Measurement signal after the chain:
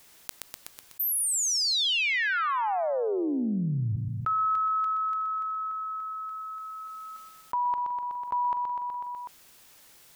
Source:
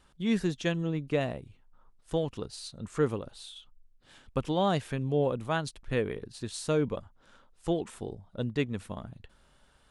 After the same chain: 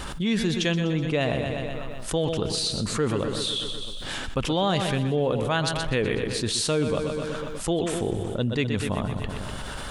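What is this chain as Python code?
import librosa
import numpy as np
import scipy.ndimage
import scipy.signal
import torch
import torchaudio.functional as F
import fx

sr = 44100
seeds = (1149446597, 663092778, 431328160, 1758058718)

p1 = fx.dynamic_eq(x, sr, hz=3400.0, q=0.83, threshold_db=-49.0, ratio=4.0, max_db=6)
p2 = p1 + fx.echo_feedback(p1, sr, ms=124, feedback_pct=54, wet_db=-12.0, dry=0)
y = fx.env_flatten(p2, sr, amount_pct=70)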